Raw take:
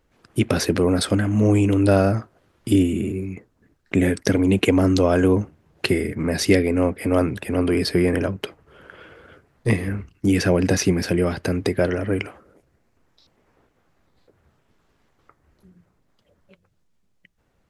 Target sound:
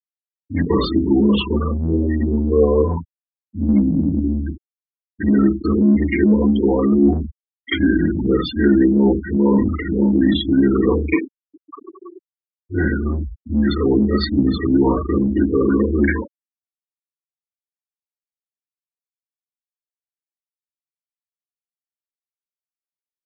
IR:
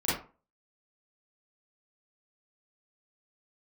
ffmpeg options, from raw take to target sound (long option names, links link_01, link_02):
-filter_complex "[0:a]areverse,acompressor=threshold=-25dB:ratio=10,areverse,equalizer=frequency=190:width=3.3:gain=-12.5,asetrate=33560,aresample=44100,lowpass=frequency=5300:width=0.5412,lowpass=frequency=5300:width=1.3066[link_01];[1:a]atrim=start_sample=2205[link_02];[link_01][link_02]afir=irnorm=-1:irlink=0,afftfilt=real='re*gte(hypot(re,im),0.126)':imag='im*gte(hypot(re,im),0.126)':win_size=1024:overlap=0.75,acrossover=split=190|2000[link_03][link_04][link_05];[link_03]asoftclip=type=tanh:threshold=-25dB[link_06];[link_06][link_04][link_05]amix=inputs=3:normalize=0,volume=3.5dB"